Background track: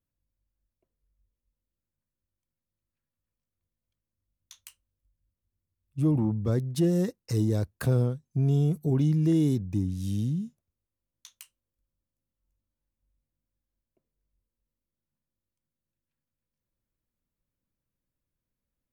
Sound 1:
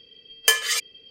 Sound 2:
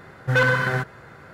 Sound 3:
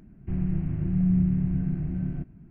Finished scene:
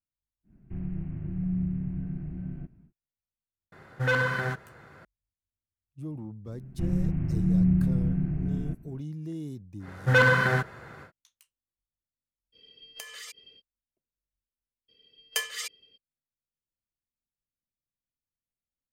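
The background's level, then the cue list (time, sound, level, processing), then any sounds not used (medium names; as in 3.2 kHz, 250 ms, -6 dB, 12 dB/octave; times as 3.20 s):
background track -13.5 dB
0.43 s: add 3 -7 dB, fades 0.10 s
3.72 s: add 2 -6.5 dB
6.51 s: add 3
9.79 s: add 2 -1 dB, fades 0.10 s
12.52 s: add 1 -5.5 dB, fades 0.05 s + compression, threshold -35 dBFS
14.88 s: add 1 -11.5 dB, fades 0.02 s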